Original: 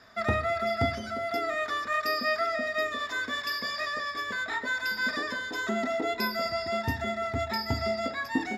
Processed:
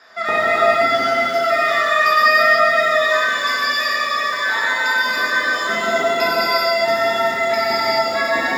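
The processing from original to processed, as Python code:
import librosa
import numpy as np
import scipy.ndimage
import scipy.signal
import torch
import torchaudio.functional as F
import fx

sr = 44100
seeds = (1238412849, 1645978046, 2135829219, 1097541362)

y = fx.octave_divider(x, sr, octaves=2, level_db=3.0)
y = scipy.signal.sosfilt(scipy.signal.butter(2, 510.0, 'highpass', fs=sr, output='sos'), y)
y = fx.high_shelf(y, sr, hz=10000.0, db=-9.0)
y = fx.rev_gated(y, sr, seeds[0], gate_ms=470, shape='flat', drr_db=-7.5)
y = fx.echo_crushed(y, sr, ms=89, feedback_pct=80, bits=7, wet_db=-15)
y = F.gain(torch.from_numpy(y), 6.5).numpy()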